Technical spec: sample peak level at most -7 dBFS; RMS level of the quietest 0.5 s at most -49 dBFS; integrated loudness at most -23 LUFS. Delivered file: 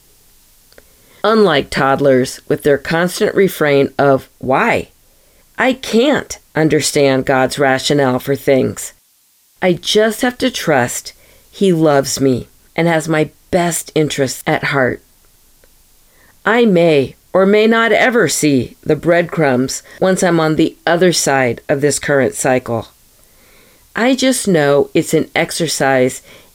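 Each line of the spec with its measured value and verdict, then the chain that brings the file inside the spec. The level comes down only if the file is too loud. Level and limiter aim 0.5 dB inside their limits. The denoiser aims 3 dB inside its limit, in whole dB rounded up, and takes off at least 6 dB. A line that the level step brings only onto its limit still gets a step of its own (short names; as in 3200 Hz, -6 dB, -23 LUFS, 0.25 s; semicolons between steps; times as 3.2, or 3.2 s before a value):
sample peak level -1.5 dBFS: fail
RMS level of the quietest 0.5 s -54 dBFS: OK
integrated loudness -14.0 LUFS: fail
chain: gain -9.5 dB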